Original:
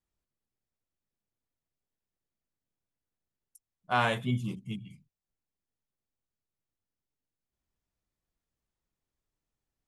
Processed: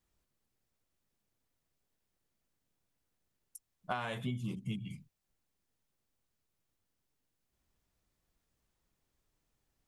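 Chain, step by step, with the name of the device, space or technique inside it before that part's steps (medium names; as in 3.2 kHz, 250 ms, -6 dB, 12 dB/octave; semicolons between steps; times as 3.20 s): serial compression, leveller first (compression 2.5:1, threshold -28 dBFS, peak gain reduction 5.5 dB; compression 8:1, threshold -41 dBFS, peak gain reduction 15 dB); trim +7 dB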